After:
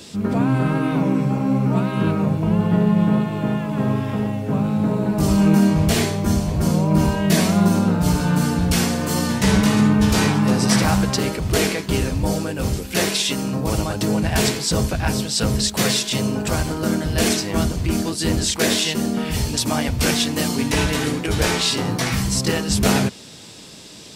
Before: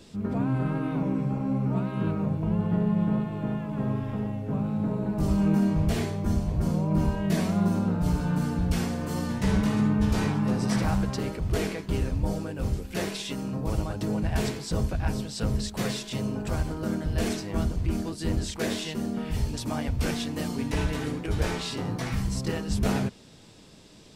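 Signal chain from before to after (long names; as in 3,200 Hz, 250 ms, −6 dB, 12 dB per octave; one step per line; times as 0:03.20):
high-pass filter 100 Hz 6 dB per octave
high-shelf EQ 2,400 Hz +8 dB
level +9 dB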